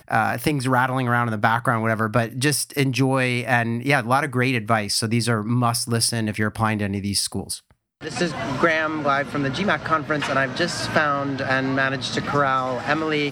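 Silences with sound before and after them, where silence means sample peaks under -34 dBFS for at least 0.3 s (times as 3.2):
7.59–8.02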